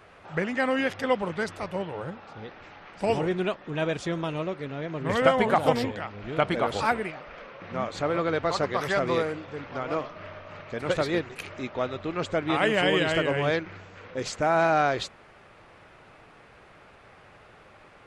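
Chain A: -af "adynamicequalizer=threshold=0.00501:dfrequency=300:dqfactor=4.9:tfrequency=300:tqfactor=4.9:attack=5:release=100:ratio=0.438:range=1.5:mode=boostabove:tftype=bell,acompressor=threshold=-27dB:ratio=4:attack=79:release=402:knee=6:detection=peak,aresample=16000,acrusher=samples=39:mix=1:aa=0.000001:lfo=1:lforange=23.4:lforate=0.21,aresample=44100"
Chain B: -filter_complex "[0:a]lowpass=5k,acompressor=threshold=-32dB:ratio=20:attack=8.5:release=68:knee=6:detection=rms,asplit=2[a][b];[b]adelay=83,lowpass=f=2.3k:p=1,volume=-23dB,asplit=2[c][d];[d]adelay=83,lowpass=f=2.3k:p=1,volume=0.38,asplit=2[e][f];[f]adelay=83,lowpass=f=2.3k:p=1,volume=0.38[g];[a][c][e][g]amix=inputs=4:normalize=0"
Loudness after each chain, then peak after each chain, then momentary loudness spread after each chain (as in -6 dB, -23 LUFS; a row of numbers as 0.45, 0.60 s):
-32.0, -37.5 LUFS; -13.5, -22.5 dBFS; 14, 17 LU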